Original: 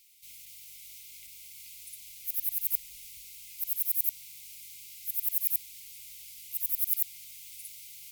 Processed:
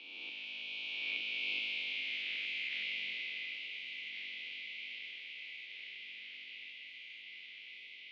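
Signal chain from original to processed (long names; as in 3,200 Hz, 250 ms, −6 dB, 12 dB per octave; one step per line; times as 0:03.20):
peak hold with a rise ahead of every peak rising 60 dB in 2.17 s
source passing by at 0:01.88, 23 m/s, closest 19 metres
in parallel at −2.5 dB: brickwall limiter −33.5 dBFS, peak gain reduction 22.5 dB
on the sum: feedback echo with a long and a short gap by turns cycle 1,051 ms, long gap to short 3 to 1, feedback 63%, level −15 dB
single-sideband voice off tune +70 Hz 210–3,000 Hz
level +17.5 dB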